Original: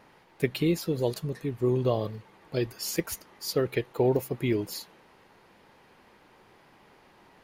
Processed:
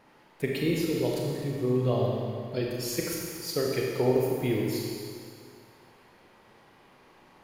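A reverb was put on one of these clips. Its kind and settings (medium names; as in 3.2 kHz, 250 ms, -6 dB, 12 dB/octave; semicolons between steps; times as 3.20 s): Schroeder reverb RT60 2.1 s, combs from 28 ms, DRR -2 dB; trim -3.5 dB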